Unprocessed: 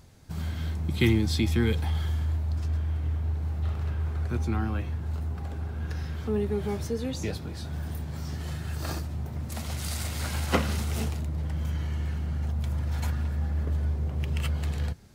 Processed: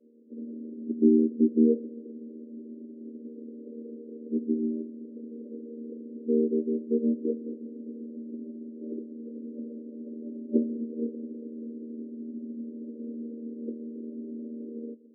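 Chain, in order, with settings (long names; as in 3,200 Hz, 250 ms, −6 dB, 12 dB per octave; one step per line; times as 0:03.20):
channel vocoder with a chord as carrier major triad, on D#3
brick-wall band-pass 220–590 Hz
level +6.5 dB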